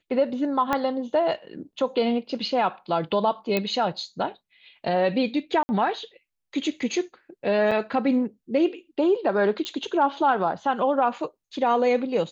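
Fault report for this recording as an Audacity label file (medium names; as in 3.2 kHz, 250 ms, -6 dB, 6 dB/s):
0.730000	0.730000	pop -10 dBFS
3.570000	3.570000	pop -10 dBFS
5.630000	5.690000	dropout 60 ms
7.710000	7.720000	dropout 5.7 ms
9.650000	9.650000	pop -16 dBFS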